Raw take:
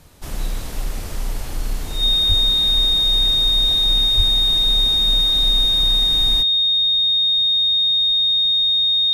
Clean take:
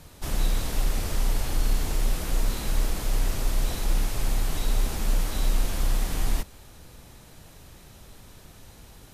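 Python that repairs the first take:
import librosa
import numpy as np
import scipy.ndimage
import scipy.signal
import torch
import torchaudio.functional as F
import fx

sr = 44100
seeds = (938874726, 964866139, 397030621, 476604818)

y = fx.notch(x, sr, hz=3700.0, q=30.0)
y = fx.highpass(y, sr, hz=140.0, slope=24, at=(2.28, 2.4), fade=0.02)
y = fx.highpass(y, sr, hz=140.0, slope=24, at=(4.16, 4.28), fade=0.02)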